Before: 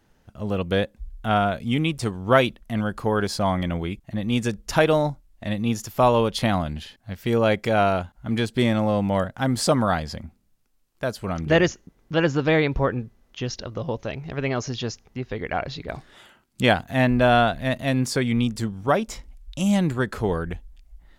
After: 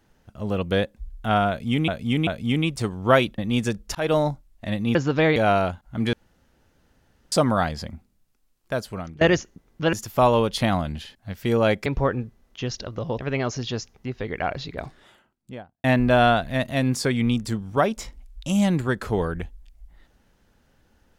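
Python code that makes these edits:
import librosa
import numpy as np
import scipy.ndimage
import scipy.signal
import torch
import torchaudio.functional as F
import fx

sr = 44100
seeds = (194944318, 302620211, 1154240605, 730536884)

y = fx.studio_fade_out(x, sr, start_s=15.79, length_s=1.16)
y = fx.edit(y, sr, fx.repeat(start_s=1.49, length_s=0.39, count=3),
    fx.cut(start_s=2.6, length_s=1.57),
    fx.fade_in_span(start_s=4.74, length_s=0.27, curve='qsin'),
    fx.swap(start_s=5.74, length_s=1.93, other_s=12.24, other_length_s=0.41),
    fx.room_tone_fill(start_s=8.44, length_s=1.19),
    fx.fade_out_to(start_s=11.12, length_s=0.4, floor_db=-21.5),
    fx.cut(start_s=13.98, length_s=0.32), tone=tone)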